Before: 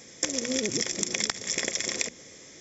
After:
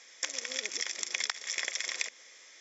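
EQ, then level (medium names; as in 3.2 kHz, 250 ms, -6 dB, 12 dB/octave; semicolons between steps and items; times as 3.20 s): high-pass 1.1 kHz 12 dB/octave; distance through air 96 m; 0.0 dB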